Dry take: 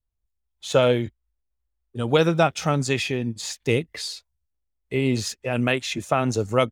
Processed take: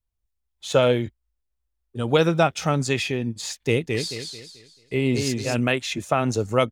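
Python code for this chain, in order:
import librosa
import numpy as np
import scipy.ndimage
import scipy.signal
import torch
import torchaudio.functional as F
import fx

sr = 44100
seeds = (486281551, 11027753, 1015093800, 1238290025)

y = fx.echo_warbled(x, sr, ms=219, feedback_pct=35, rate_hz=2.8, cents=86, wet_db=-4.5, at=(3.59, 5.59))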